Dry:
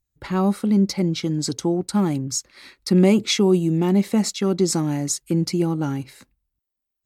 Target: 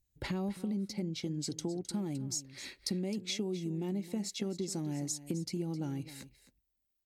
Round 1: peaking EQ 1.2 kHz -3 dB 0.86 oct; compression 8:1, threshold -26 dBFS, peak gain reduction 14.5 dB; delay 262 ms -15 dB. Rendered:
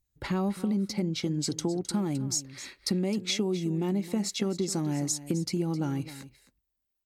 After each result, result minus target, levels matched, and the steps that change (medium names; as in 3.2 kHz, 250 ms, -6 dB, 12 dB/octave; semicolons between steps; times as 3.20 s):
compression: peak gain reduction -7 dB; 1 kHz band +2.5 dB
change: compression 8:1, threshold -34 dBFS, peak gain reduction 21.5 dB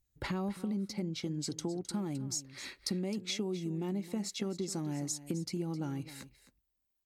1 kHz band +3.0 dB
change: peaking EQ 1.2 kHz -10.5 dB 0.86 oct